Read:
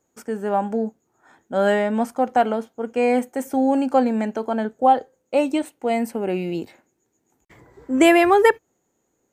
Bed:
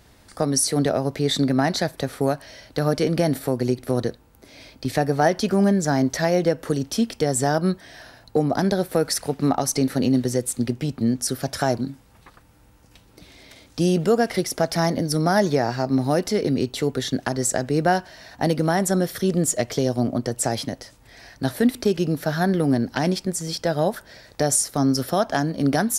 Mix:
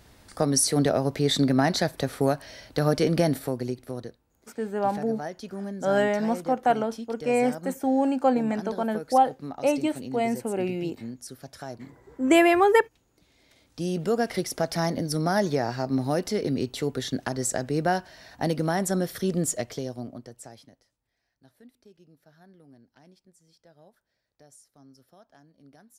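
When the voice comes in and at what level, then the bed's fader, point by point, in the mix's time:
4.30 s, -4.0 dB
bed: 3.22 s -1.5 dB
4.22 s -16.5 dB
13.29 s -16.5 dB
14.22 s -5 dB
19.47 s -5 dB
21.21 s -34 dB

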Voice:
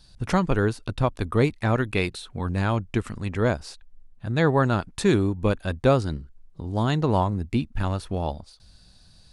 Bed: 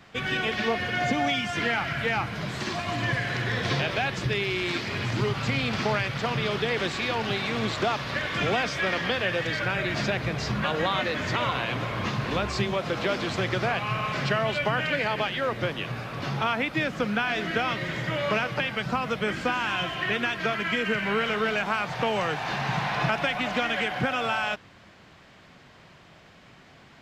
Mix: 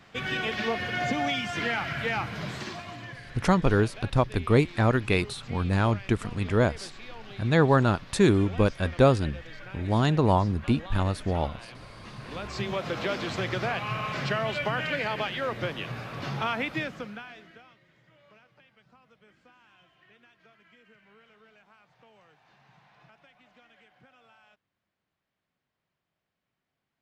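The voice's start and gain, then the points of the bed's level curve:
3.15 s, 0.0 dB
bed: 2.50 s -2.5 dB
3.19 s -17 dB
12.02 s -17 dB
12.73 s -3 dB
16.74 s -3 dB
17.82 s -32.5 dB

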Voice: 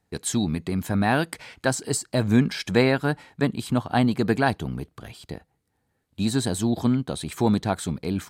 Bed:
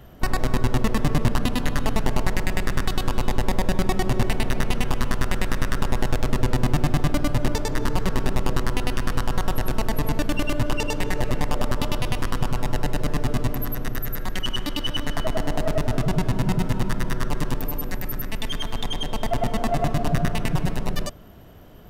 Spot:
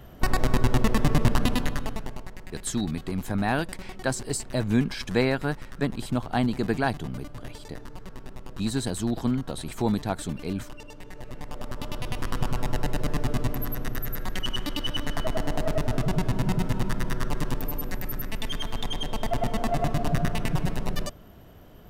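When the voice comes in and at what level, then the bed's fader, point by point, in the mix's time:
2.40 s, -4.0 dB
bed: 1.54 s -0.5 dB
2.31 s -18.5 dB
11.06 s -18.5 dB
12.41 s -3 dB

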